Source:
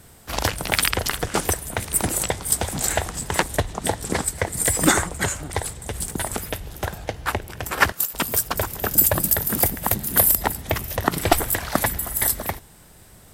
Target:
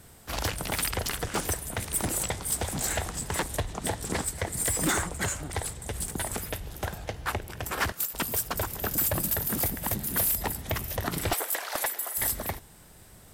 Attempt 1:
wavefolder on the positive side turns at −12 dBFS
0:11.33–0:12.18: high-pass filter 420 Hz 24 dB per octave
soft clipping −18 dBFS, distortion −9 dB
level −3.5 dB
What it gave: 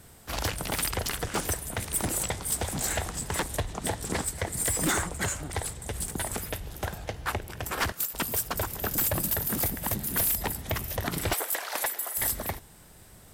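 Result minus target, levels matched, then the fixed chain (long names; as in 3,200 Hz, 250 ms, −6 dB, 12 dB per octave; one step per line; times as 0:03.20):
wavefolder on the positive side: distortion +28 dB
wavefolder on the positive side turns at −3 dBFS
0:11.33–0:12.18: high-pass filter 420 Hz 24 dB per octave
soft clipping −18 dBFS, distortion −8 dB
level −3.5 dB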